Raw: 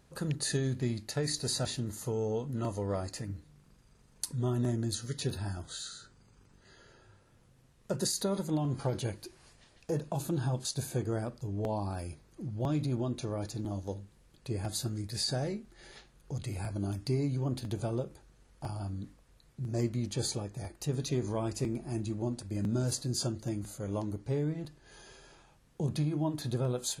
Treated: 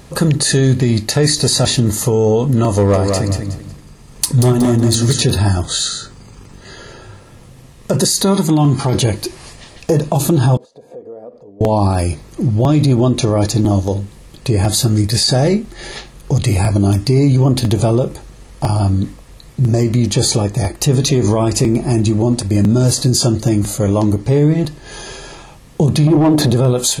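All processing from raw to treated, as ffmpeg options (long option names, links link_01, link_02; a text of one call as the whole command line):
ffmpeg -i in.wav -filter_complex "[0:a]asettb=1/sr,asplit=3[link_01][link_02][link_03];[link_01]atrim=end=2.754[link_04];[link_02]atrim=start=2.75:end=5.22,asetpts=PTS-STARTPTS,afade=type=in:duration=0.004:curve=qsin,afade=type=out:start_time=2.466:duration=0.004:curve=qsin,tremolo=f=1.3:d=0.38,volume=28.5dB,asoftclip=hard,volume=-28.5dB,aecho=1:1:184|368|552|736:0.562|0.163|0.0473|0.0137,atrim=end_sample=108927[link_05];[link_03]atrim=start=5.216[link_06];[link_04][link_05]acrossfade=duration=0.004:curve1=hsin:curve2=qsin[link_07];[link_07][link_06]acrossfade=duration=0.004:curve1=qsin:curve2=hsin,asettb=1/sr,asplit=3[link_08][link_09][link_10];[link_08]atrim=end=8.244[link_11];[link_09]atrim=start=8.24:end=8.95,asetpts=PTS-STARTPTS,afade=type=in:duration=0.004:curve=qsin,afade=type=out:start_time=0.706:duration=0.004:curve=qsin,highpass=frequency=100:poles=1,equalizer=frequency=530:width=3.4:gain=-10.5[link_12];[link_10]atrim=start=8.946[link_13];[link_11][link_12]acrossfade=duration=0.004:curve1=hsin:curve2=qsin[link_14];[link_14][link_13]acrossfade=duration=0.004:curve1=qsin:curve2=hsin,asettb=1/sr,asplit=3[link_15][link_16][link_17];[link_15]atrim=end=10.574[link_18];[link_16]atrim=start=10.57:end=11.61,asetpts=PTS-STARTPTS,afade=type=in:duration=0.004:curve=qsin,afade=type=out:start_time=1.036:duration=0.004:curve=qsin,acompressor=threshold=-45dB:ratio=8:attack=3.2:release=140:knee=1:detection=peak,bandpass=frequency=520:width_type=q:width=3.3,aecho=1:1:4.2:0.4,atrim=end_sample=45864[link_19];[link_17]atrim=start=11.606[link_20];[link_18][link_19]acrossfade=duration=0.004:curve1=hsin:curve2=qsin[link_21];[link_21][link_20]acrossfade=duration=0.004:curve1=qsin:curve2=hsin,asettb=1/sr,asplit=3[link_22][link_23][link_24];[link_22]atrim=end=26.074[link_25];[link_23]atrim=start=26.07:end=26.53,asetpts=PTS-STARTPTS,afade=type=in:duration=0.004:curve=qsin,afade=type=out:start_time=0.456:duration=0.004:curve=qsin,volume=33dB,asoftclip=hard,volume=-33dB,equalizer=frequency=370:width=0.41:gain=11[link_26];[link_24]atrim=start=26.526[link_27];[link_25][link_26]acrossfade=duration=0.004:curve1=hsin:curve2=qsin[link_28];[link_28][link_27]acrossfade=duration=0.004:curve1=qsin:curve2=hsin,bandreject=frequency=1500:width=8.2,alimiter=level_in=27.5dB:limit=-1dB:release=50:level=0:latency=1,volume=-4dB" out.wav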